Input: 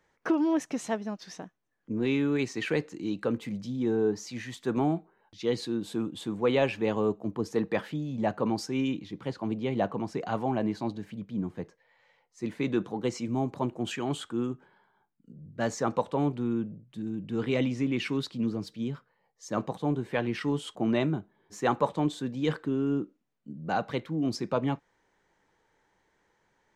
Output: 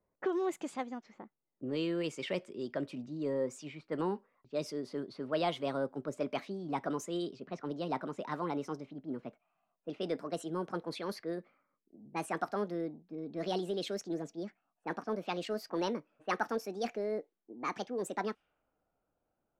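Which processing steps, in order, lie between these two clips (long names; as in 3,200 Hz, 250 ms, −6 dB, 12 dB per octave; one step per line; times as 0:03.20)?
gliding playback speed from 115% → 158%
low-pass that shuts in the quiet parts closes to 730 Hz, open at −25.5 dBFS
level −7 dB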